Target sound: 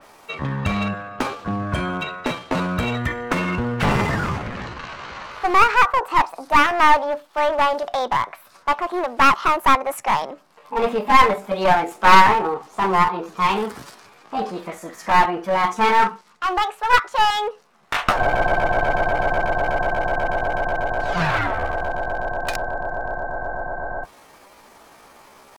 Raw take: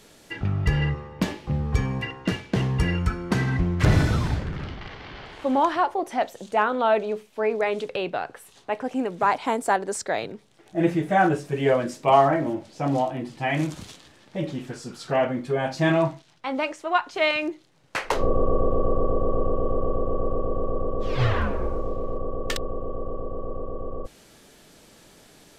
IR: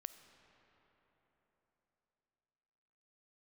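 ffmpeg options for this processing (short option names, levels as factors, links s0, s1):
-af "equalizer=f=850:t=o:w=1.9:g=13.5,asetrate=60591,aresample=44100,atempo=0.727827,aeval=exprs='clip(val(0),-1,0.141)':c=same,adynamicequalizer=threshold=0.0447:dfrequency=3300:dqfactor=0.7:tfrequency=3300:tqfactor=0.7:attack=5:release=100:ratio=0.375:range=2:mode=cutabove:tftype=highshelf,volume=0.841"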